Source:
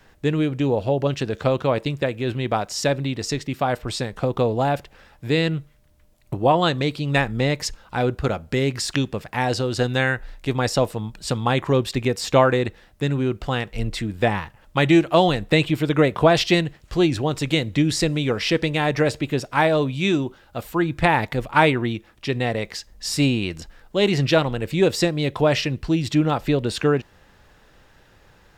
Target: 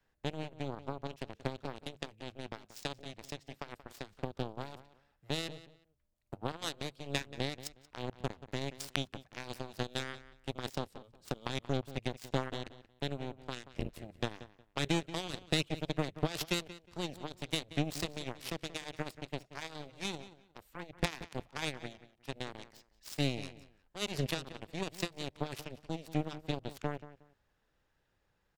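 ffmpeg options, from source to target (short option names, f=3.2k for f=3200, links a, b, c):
-filter_complex "[0:a]acrossover=split=230|3000[a][b][c];[b]acompressor=threshold=-31dB:ratio=4[d];[a][d][c]amix=inputs=3:normalize=0,aeval=exprs='0.398*(cos(1*acos(clip(val(0)/0.398,-1,1)))-cos(1*PI/2))+0.0794*(cos(3*acos(clip(val(0)/0.398,-1,1)))-cos(3*PI/2))+0.0282*(cos(7*acos(clip(val(0)/0.398,-1,1)))-cos(7*PI/2))':c=same,asplit=2[e][f];[f]adelay=181,lowpass=f=3.9k:p=1,volume=-15dB,asplit=2[g][h];[h]adelay=181,lowpass=f=3.9k:p=1,volume=0.23[i];[g][i]amix=inputs=2:normalize=0[j];[e][j]amix=inputs=2:normalize=0,volume=-3.5dB"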